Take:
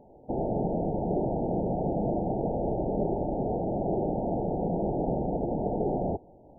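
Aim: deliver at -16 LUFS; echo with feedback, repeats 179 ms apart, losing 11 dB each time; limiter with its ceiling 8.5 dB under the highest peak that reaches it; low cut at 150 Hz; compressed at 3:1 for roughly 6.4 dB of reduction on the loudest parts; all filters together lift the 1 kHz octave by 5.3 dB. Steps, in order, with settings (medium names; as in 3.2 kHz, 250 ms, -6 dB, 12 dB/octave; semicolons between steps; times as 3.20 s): high-pass 150 Hz; peaking EQ 1 kHz +8.5 dB; compression 3:1, threshold -32 dBFS; peak limiter -30 dBFS; feedback delay 179 ms, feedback 28%, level -11 dB; trim +22 dB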